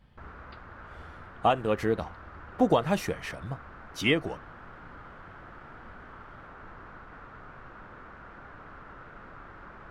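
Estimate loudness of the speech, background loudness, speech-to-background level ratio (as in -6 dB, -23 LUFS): -28.5 LUFS, -47.5 LUFS, 19.0 dB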